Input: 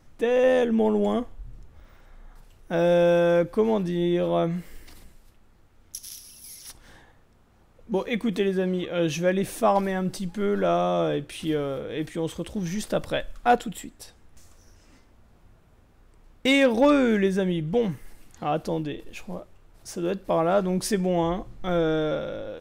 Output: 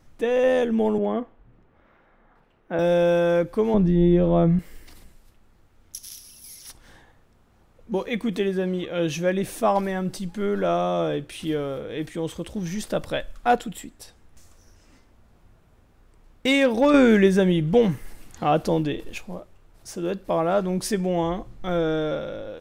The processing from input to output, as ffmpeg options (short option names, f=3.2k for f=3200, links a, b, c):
-filter_complex "[0:a]asettb=1/sr,asplit=3[a][b][c];[a]atrim=end=0.984[d];[b]atrim=start=0.98:end=2.79,asetpts=PTS-STARTPTS,afade=t=in:d=0.004:c=qsin,afade=t=out:st=1.806:d=0.004:c=qsin,acrossover=split=150 2900:gain=0.158 1 0.0708[e][f][g];[e][f][g]amix=inputs=3:normalize=0[h];[c]atrim=start=2.786[i];[d][h]acrossfade=d=0.004:c1=hsin:c2=qsin[j];[j][i]acrossfade=d=0.004:c1=qsin:c2=hsin,asettb=1/sr,asplit=3[k][l][m];[k]atrim=end=3.744[n];[l]atrim=start=3.74:end=4.59,asetpts=PTS-STARTPTS,afade=t=in:d=0.004:c=qsin,afade=t=out:st=0.846:d=0.004:c=qsin,aemphasis=mode=reproduction:type=riaa[o];[m]atrim=start=4.586[p];[n][o]acrossfade=d=0.004:c1=hsin:c2=qsin[q];[q][p]acrossfade=d=0.004:c1=qsin:c2=hsin,asplit=3[r][s][t];[r]atrim=end=16.942[u];[s]atrim=start=16.938:end=19.182,asetpts=PTS-STARTPTS,volume=5.5dB[v];[t]atrim=start=19.178[w];[u][v]acrossfade=d=0.004:c1=hsin:c2=hsin[x];[x][w]acrossfade=d=0.004:c1=hsin:c2=hsin"